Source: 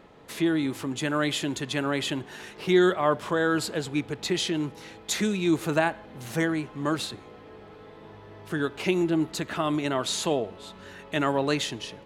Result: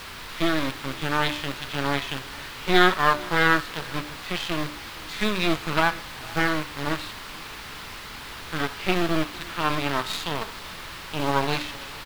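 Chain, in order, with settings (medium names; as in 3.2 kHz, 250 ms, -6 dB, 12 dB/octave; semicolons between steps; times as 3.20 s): harmonic-percussive split percussive -18 dB; in parallel at -5.5 dB: bit crusher 5-bit; on the sum: spectral selection erased 11.10–11.31 s, 880–2400 Hz; on a send: delay 454 ms -22 dB; on the sum: half-wave rectifier; added noise pink -43 dBFS; high-order bell 2.1 kHz +9.5 dB 2.7 oct; de-hum 99.09 Hz, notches 30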